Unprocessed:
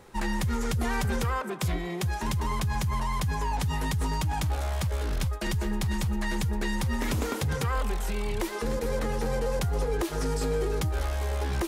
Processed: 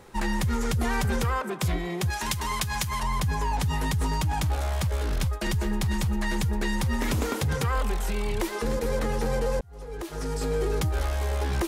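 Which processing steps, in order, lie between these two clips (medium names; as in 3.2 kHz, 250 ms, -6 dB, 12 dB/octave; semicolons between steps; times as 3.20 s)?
2.10–3.03 s: tilt shelf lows -6.5 dB; 9.61–10.69 s: fade in; trim +2 dB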